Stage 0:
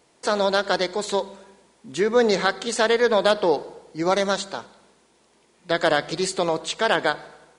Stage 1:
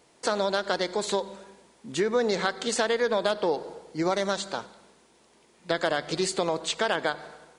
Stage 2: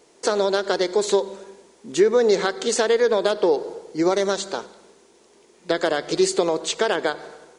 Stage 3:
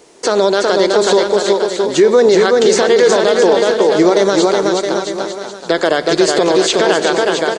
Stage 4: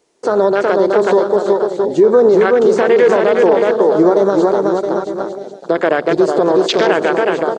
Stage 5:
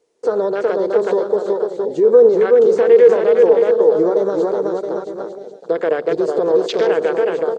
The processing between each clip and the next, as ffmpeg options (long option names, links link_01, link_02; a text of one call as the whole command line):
ffmpeg -i in.wav -af "acompressor=threshold=-23dB:ratio=3" out.wav
ffmpeg -i in.wav -af "equalizer=frequency=100:width_type=o:width=0.67:gain=-11,equalizer=frequency=400:width_type=o:width=0.67:gain=9,equalizer=frequency=6300:width_type=o:width=0.67:gain=5,volume=2dB" out.wav
ffmpeg -i in.wav -filter_complex "[0:a]acrossover=split=7300[link_01][link_02];[link_02]acompressor=threshold=-46dB:ratio=4:attack=1:release=60[link_03];[link_01][link_03]amix=inputs=2:normalize=0,asplit=2[link_04][link_05];[link_05]aecho=0:1:370|666|902.8|1092|1244:0.631|0.398|0.251|0.158|0.1[link_06];[link_04][link_06]amix=inputs=2:normalize=0,alimiter=level_in=11dB:limit=-1dB:release=50:level=0:latency=1,volume=-1dB" out.wav
ffmpeg -i in.wav -af "afwtdn=0.1" out.wav
ffmpeg -i in.wav -af "equalizer=frequency=470:width_type=o:width=0.29:gain=12.5,volume=-9dB" out.wav